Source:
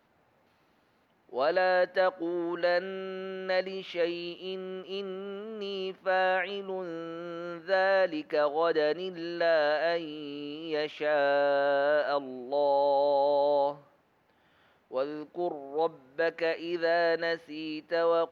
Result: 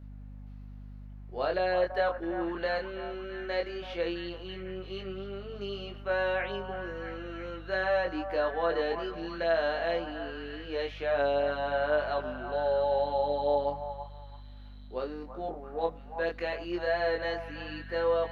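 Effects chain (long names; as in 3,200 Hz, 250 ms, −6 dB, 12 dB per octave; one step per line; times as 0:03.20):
mains hum 50 Hz, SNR 15 dB
chorus effect 0.16 Hz, delay 19.5 ms, depth 4.7 ms
echo through a band-pass that steps 332 ms, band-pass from 920 Hz, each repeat 0.7 octaves, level −6 dB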